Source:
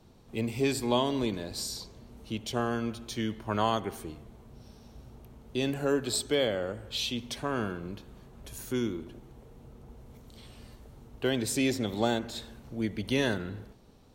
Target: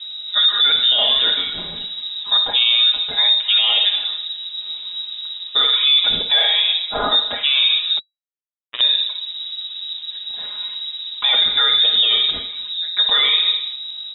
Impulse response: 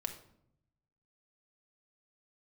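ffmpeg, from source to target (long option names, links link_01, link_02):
-filter_complex "[0:a]asettb=1/sr,asplit=3[link_01][link_02][link_03];[link_01]atrim=end=0.984[link_04];[link_02]atrim=start=0.98:end=1.76,asetpts=PTS-STARTPTS,afade=type=in:duration=0.004:curve=qsin,afade=type=out:start_time=0.776:duration=0.004:curve=qsin,aemphasis=mode=production:type=bsi[link_05];[link_03]atrim=start=1.756[link_06];[link_04][link_05]acrossfade=duration=0.004:curve1=hsin:curve2=qsin[link_07];[link_07][link_06]acrossfade=duration=0.004:curve1=qsin:curve2=hsin,asplit=3[link_08][link_09][link_10];[link_08]afade=type=out:start_time=12.37:duration=0.02[link_11];[link_09]acompressor=threshold=-43dB:ratio=8,afade=type=in:start_time=12.37:duration=0.02,afade=type=out:start_time=12.95:duration=0.02[link_12];[link_10]afade=type=in:start_time=12.95:duration=0.02[link_13];[link_11][link_12][link_13]amix=inputs=3:normalize=0[link_14];[1:a]atrim=start_sample=2205,afade=type=out:start_time=0.19:duration=0.01,atrim=end_sample=8820[link_15];[link_14][link_15]afir=irnorm=-1:irlink=0,aeval=exprs='val(0)+0.00447*(sin(2*PI*50*n/s)+sin(2*PI*2*50*n/s)/2+sin(2*PI*3*50*n/s)/3+sin(2*PI*4*50*n/s)/4+sin(2*PI*5*50*n/s)/5)':channel_layout=same,aecho=1:1:4.9:0.99,aecho=1:1:256:0.0794,asettb=1/sr,asplit=3[link_16][link_17][link_18];[link_16]atrim=end=7.994[link_19];[link_17]atrim=start=7.99:end=8.81,asetpts=PTS-STARTPTS,afade=type=in:duration=0.004:curve=qsin,afade=type=out:start_time=0.816:duration=0.004:curve=qsin,acrusher=bits=2:mix=0:aa=0.5[link_20];[link_18]atrim=start=8.806[link_21];[link_19][link_20]acrossfade=duration=0.004:curve1=hsin:curve2=qsin[link_22];[link_22][link_21]acrossfade=duration=0.004:curve1=qsin:curve2=hsin,lowpass=frequency=3300:width_type=q:width=0.5098,lowpass=frequency=3300:width_type=q:width=0.6013,lowpass=frequency=3300:width_type=q:width=0.9,lowpass=frequency=3300:width_type=q:width=2.563,afreqshift=-3900,alimiter=level_in=20.5dB:limit=-1dB:release=50:level=0:latency=1,volume=-6.5dB"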